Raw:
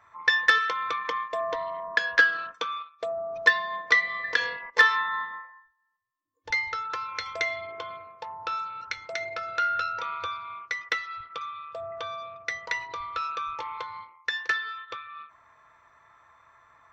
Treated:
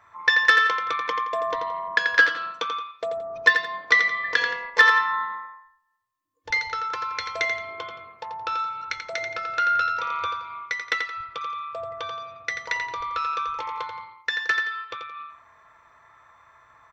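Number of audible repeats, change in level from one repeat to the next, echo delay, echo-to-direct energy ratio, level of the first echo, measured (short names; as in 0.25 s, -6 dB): 2, -10.5 dB, 86 ms, -6.5 dB, -7.0 dB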